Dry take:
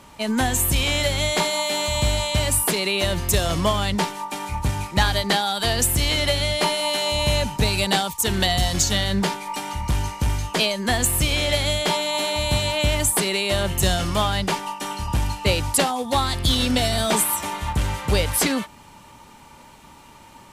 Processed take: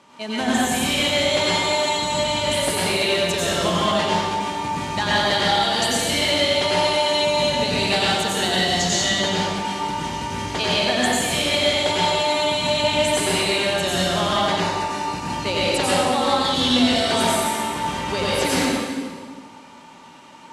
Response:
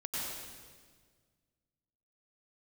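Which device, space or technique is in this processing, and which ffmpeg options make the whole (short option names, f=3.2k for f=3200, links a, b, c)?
supermarket ceiling speaker: -filter_complex "[0:a]highpass=200,lowpass=6.7k[a];[1:a]atrim=start_sample=2205[b];[a][b]afir=irnorm=-1:irlink=0,asettb=1/sr,asplit=3[c][d][e];[c]atrim=end=14.604[f];[d]atrim=start=14.6:end=15.33,asetpts=PTS-STARTPTS,afade=t=in:d=0.004:c=qsin,afade=t=out:st=0.726:d=0.004:c=qsin,bandreject=f=3.2k:w=6.6[g];[e]atrim=start=15.326[h];[f][g]acrossfade=d=0.004:c1=hsin:c2=qsin[i];[i][h]acrossfade=d=0.004:c1=qsin:c2=hsin"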